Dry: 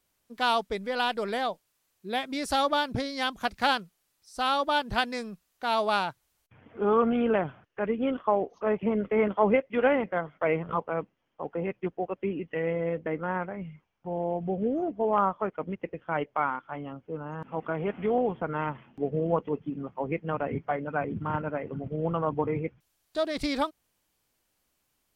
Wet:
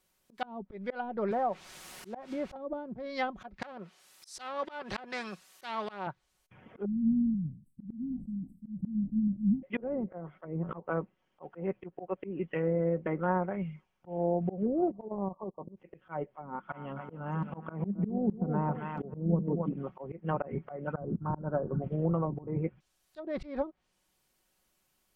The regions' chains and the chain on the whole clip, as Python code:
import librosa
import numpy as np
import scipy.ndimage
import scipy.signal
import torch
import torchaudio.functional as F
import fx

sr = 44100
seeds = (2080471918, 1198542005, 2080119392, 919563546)

y = fx.chain(x, sr, fx.cheby1_lowpass(hz=910.0, order=2),
    fx.quant_dither(seeds[0], bits=8, dither='triangular'),
    fx.band_squash(depth_pct=40), at=(1.31, 2.56))
y = fx.chain(y, sr, fx.highpass(hz=510.0, slope=6),
    fx.spectral_comp(ratio=2.0), at=(3.62, 6.07))
y = fx.chain(y, sr, fx.brickwall_bandstop(low_hz=290.0, high_hz=7600.0),
    fx.sustainer(db_per_s=150.0), at=(6.85, 9.63))
y = fx.chain(y, sr, fx.level_steps(step_db=13),
    fx.brickwall_lowpass(high_hz=1200.0), at=(14.91, 15.77))
y = fx.chain(y, sr, fx.peak_eq(hz=200.0, db=13.0, octaves=0.37),
    fx.echo_feedback(ms=269, feedback_pct=32, wet_db=-10.5), at=(16.43, 19.73))
y = fx.chain(y, sr, fx.brickwall_lowpass(high_hz=1700.0),
    fx.low_shelf(hz=140.0, db=8.5), at=(20.93, 21.82))
y = fx.env_lowpass_down(y, sr, base_hz=320.0, full_db=-22.0)
y = y + 0.44 * np.pad(y, (int(5.4 * sr / 1000.0), 0))[:len(y)]
y = fx.auto_swell(y, sr, attack_ms=192.0)